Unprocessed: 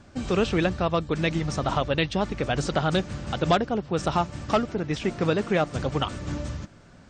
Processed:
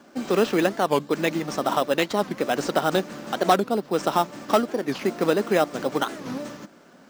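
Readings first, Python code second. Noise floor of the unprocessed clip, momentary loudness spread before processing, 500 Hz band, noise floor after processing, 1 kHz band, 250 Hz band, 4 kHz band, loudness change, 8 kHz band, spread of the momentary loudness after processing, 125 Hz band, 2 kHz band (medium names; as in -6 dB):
-51 dBFS, 7 LU, +3.5 dB, -52 dBFS, +3.5 dB, +1.0 dB, +0.5 dB, +2.0 dB, +4.0 dB, 7 LU, -8.0 dB, +1.5 dB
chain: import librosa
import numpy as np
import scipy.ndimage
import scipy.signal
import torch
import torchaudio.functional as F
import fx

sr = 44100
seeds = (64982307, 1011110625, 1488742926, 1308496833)

p1 = scipy.signal.sosfilt(scipy.signal.butter(4, 220.0, 'highpass', fs=sr, output='sos'), x)
p2 = fx.sample_hold(p1, sr, seeds[0], rate_hz=4500.0, jitter_pct=0)
p3 = p1 + (p2 * librosa.db_to_amplitude(-5.0))
y = fx.record_warp(p3, sr, rpm=45.0, depth_cents=250.0)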